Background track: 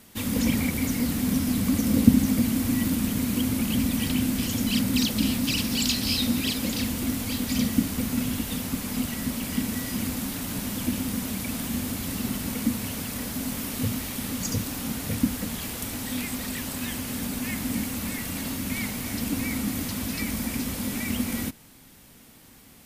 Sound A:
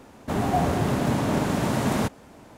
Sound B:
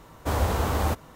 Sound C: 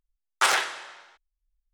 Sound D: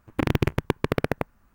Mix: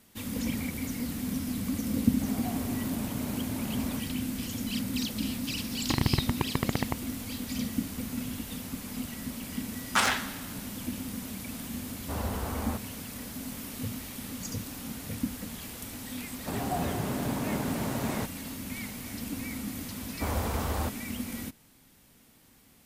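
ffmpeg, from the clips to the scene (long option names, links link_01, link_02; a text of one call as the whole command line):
ffmpeg -i bed.wav -i cue0.wav -i cue1.wav -i cue2.wav -i cue3.wav -filter_complex "[1:a]asplit=2[link_01][link_02];[2:a]asplit=2[link_03][link_04];[0:a]volume=-8dB[link_05];[4:a]aecho=1:1:1:0.54[link_06];[link_03]acrossover=split=3200[link_07][link_08];[link_08]acompressor=threshold=-55dB:ratio=4:attack=1:release=60[link_09];[link_07][link_09]amix=inputs=2:normalize=0[link_10];[link_01]atrim=end=2.57,asetpts=PTS-STARTPTS,volume=-16.5dB,afade=type=in:duration=0.004:curve=hsin,afade=type=out:start_time=2.566:duration=0.004:curve=hsin,adelay=1920[link_11];[link_06]atrim=end=1.54,asetpts=PTS-STARTPTS,volume=-6dB,afade=type=in:duration=0.004:curve=hsin,afade=type=out:start_time=1.536:duration=0.004:curve=hsin,adelay=5710[link_12];[3:a]atrim=end=1.73,asetpts=PTS-STARTPTS,volume=-3.5dB,afade=type=in:duration=0.004:curve=hsin,afade=type=out:start_time=1.726:duration=0.004:curve=hsin,adelay=420714S[link_13];[link_10]atrim=end=1.15,asetpts=PTS-STARTPTS,volume=-9.5dB,afade=type=in:duration=0.004:curve=hsin,afade=type=out:start_time=1.146:duration=0.004:curve=hsin,adelay=11830[link_14];[link_02]atrim=end=2.57,asetpts=PTS-STARTPTS,volume=-8.5dB,afade=type=in:duration=0.004:curve=hsin,afade=type=out:start_time=2.566:duration=0.004:curve=hsin,adelay=16180[link_15];[link_04]atrim=end=1.15,asetpts=PTS-STARTPTS,volume=-6.5dB,afade=type=in:duration=0.004:curve=hsin,afade=type=out:start_time=1.146:duration=0.004:curve=hsin,adelay=19950[link_16];[link_05][link_11][link_12][link_13][link_14][link_15][link_16]amix=inputs=7:normalize=0" out.wav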